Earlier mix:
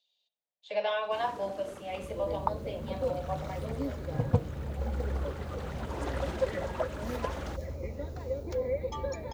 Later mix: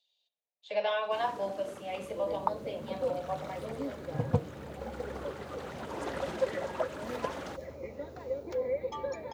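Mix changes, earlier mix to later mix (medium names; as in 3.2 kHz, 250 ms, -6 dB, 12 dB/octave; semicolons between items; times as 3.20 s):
second sound: add tone controls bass -7 dB, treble -6 dB; master: add high-pass 110 Hz 12 dB/octave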